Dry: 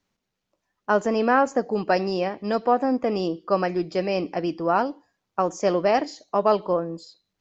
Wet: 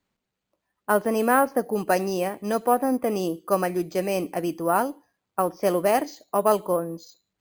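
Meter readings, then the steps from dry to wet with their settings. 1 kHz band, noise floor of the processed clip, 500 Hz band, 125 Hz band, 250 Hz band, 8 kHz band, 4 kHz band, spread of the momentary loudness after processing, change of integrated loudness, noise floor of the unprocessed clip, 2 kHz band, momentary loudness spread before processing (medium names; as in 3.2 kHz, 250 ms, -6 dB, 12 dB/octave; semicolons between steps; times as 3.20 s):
-0.5 dB, -83 dBFS, -0.5 dB, -1.0 dB, -1.0 dB, no reading, -3.0 dB, 7 LU, -0.5 dB, -81 dBFS, -1.0 dB, 7 LU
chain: Chebyshev shaper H 3 -30 dB, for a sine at -6 dBFS; careless resampling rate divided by 4×, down filtered, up hold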